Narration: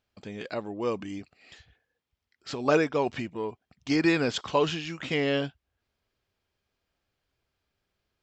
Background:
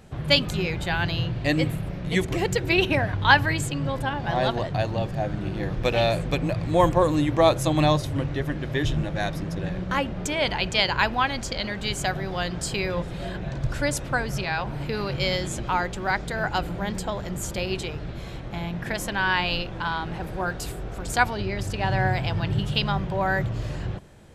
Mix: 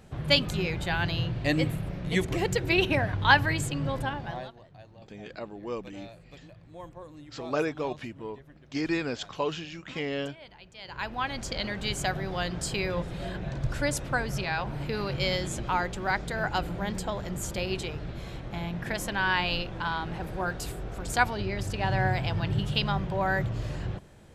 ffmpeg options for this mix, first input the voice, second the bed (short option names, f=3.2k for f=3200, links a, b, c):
-filter_complex "[0:a]adelay=4850,volume=-5.5dB[a];[1:a]volume=19dB,afade=t=out:st=4.01:d=0.5:silence=0.0794328,afade=t=in:st=10.8:d=0.78:silence=0.0794328[b];[a][b]amix=inputs=2:normalize=0"